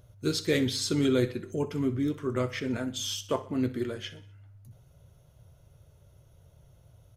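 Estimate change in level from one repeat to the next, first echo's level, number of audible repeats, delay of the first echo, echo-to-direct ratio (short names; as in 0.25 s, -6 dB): -6.0 dB, -17.0 dB, 4, 62 ms, -15.5 dB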